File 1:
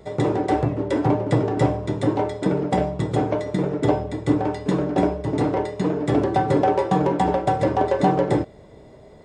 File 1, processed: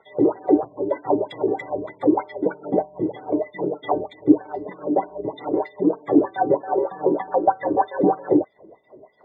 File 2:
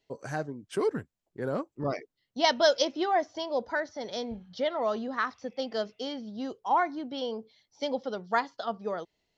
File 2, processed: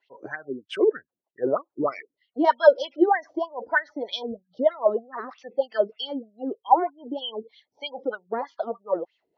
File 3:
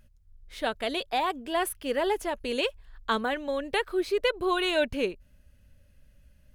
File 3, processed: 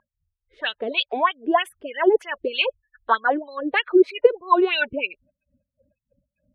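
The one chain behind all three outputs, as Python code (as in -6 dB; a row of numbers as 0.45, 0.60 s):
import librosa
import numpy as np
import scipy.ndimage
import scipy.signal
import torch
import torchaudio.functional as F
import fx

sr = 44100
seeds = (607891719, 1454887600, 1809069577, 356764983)

y = fx.spec_gate(x, sr, threshold_db=-25, keep='strong')
y = fx.wah_lfo(y, sr, hz=3.2, low_hz=310.0, high_hz=3300.0, q=4.4)
y = y * 10.0 ** (-2 / 20.0) / np.max(np.abs(y))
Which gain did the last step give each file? +9.0, +15.0, +16.5 dB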